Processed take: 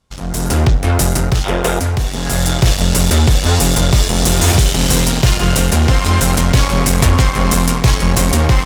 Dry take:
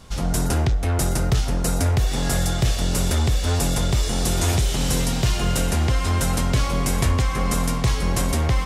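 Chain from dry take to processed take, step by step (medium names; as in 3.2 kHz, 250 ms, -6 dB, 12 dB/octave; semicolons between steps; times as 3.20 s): Chebyshev shaper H 7 -18 dB, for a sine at -11 dBFS; time-frequency box 1.44–1.79 s, 330–3800 Hz +11 dB; level rider gain up to 11.5 dB; trim -1 dB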